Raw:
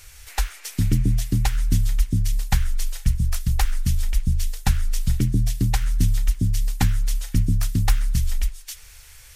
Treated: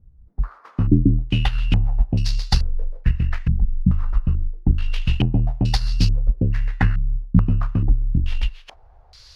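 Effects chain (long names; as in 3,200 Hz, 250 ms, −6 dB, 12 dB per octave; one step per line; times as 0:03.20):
samples in bit-reversed order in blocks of 16 samples
harmonic generator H 7 −27 dB, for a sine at −6.5 dBFS
low-pass on a step sequencer 2.3 Hz 200–4,600 Hz
level +2 dB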